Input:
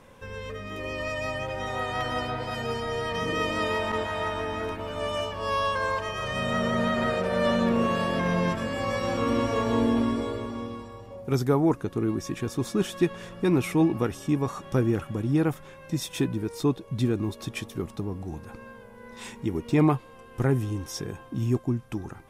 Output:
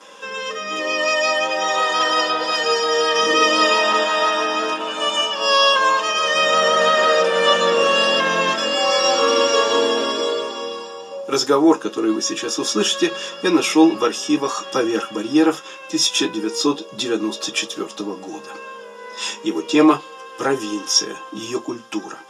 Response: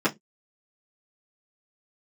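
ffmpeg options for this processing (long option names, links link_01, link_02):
-filter_complex "[0:a]aexciter=amount=6.2:drive=4.9:freq=3000,highpass=650,lowpass=7100[link_01];[1:a]atrim=start_sample=2205[link_02];[link_01][link_02]afir=irnorm=-1:irlink=0,volume=-2dB"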